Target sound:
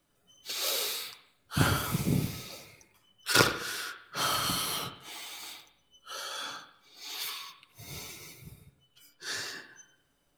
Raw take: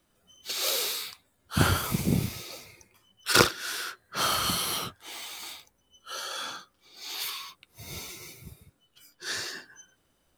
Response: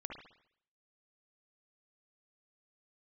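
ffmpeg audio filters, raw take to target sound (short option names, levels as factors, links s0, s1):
-filter_complex "[0:a]asplit=2[s0][s1];[1:a]atrim=start_sample=2205,adelay=7[s2];[s1][s2]afir=irnorm=-1:irlink=0,volume=0.668[s3];[s0][s3]amix=inputs=2:normalize=0,volume=0.668"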